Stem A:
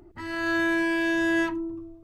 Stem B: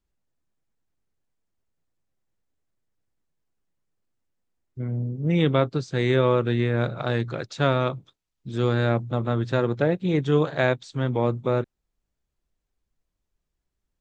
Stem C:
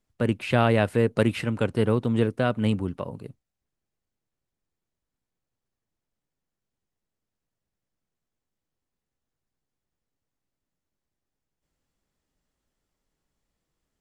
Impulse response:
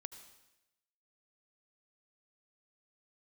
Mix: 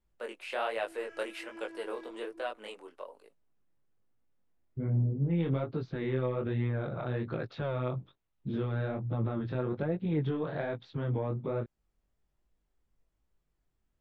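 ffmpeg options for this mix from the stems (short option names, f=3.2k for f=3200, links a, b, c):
-filter_complex "[0:a]afwtdn=0.0316,asoftclip=type=tanh:threshold=-32.5dB,adelay=600,volume=-12dB,asplit=2[a][b];[b]volume=-4.5dB[c];[1:a]highshelf=f=2.4k:g=-9.5,acontrast=82,alimiter=limit=-14dB:level=0:latency=1:release=66,volume=-2dB[d];[2:a]highpass=f=450:w=0.5412,highpass=f=450:w=1.3066,volume=-6.5dB,asplit=2[e][f];[f]apad=whole_len=115992[g];[a][g]sidechaincompress=threshold=-36dB:ratio=8:attack=16:release=469[h];[h][d]amix=inputs=2:normalize=0,lowpass=f=3.8k:w=0.5412,lowpass=f=3.8k:w=1.3066,alimiter=limit=-20.5dB:level=0:latency=1:release=312,volume=0dB[i];[3:a]atrim=start_sample=2205[j];[c][j]afir=irnorm=-1:irlink=0[k];[e][i][k]amix=inputs=3:normalize=0,flanger=delay=17.5:depth=6.4:speed=1.2"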